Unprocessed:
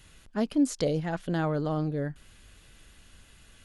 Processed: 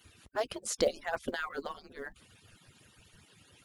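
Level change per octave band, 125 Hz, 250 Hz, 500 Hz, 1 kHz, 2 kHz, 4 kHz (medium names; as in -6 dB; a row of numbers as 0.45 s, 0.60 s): -23.0 dB, -16.5 dB, -3.0 dB, -3.0 dB, +1.5 dB, +1.5 dB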